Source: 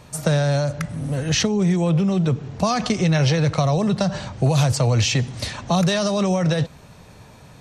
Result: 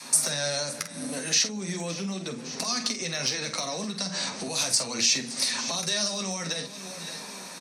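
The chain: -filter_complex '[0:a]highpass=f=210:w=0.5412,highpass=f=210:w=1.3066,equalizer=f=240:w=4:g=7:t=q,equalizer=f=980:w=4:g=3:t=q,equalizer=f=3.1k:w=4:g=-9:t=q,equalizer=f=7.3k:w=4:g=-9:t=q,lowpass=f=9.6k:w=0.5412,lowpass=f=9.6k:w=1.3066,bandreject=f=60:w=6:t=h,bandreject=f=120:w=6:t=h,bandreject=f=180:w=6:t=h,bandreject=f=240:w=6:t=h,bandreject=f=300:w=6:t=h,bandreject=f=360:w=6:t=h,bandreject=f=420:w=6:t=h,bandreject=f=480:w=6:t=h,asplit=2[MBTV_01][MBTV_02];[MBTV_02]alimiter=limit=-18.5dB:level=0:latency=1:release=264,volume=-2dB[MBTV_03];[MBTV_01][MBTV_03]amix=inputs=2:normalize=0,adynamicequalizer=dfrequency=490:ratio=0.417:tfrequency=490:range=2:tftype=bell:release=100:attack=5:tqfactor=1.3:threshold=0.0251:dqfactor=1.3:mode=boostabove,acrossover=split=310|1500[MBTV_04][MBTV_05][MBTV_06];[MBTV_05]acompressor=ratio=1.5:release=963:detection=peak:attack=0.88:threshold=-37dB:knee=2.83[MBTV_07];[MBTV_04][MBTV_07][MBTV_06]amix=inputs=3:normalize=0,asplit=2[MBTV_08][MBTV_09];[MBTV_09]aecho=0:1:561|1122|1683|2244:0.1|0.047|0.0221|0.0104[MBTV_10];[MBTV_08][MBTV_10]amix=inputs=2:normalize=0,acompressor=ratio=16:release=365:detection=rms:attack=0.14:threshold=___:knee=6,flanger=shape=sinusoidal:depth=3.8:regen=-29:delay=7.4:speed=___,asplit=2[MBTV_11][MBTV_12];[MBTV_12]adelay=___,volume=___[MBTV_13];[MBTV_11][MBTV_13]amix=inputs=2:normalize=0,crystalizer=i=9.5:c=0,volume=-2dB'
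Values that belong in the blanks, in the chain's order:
-23dB, 0.36, 47, -9.5dB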